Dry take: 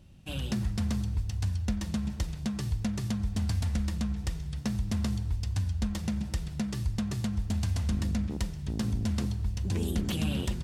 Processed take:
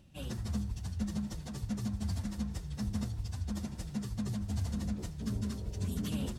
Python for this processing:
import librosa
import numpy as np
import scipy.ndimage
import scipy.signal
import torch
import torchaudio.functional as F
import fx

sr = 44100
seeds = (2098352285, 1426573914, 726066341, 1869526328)

y = fx.stretch_vocoder_free(x, sr, factor=0.6)
y = fx.low_shelf(y, sr, hz=82.0, db=-6.5)
y = fx.spec_repair(y, sr, seeds[0], start_s=5.27, length_s=0.82, low_hz=320.0, high_hz=1000.0, source='before')
y = fx.dynamic_eq(y, sr, hz=2500.0, q=1.0, threshold_db=-58.0, ratio=4.0, max_db=-6)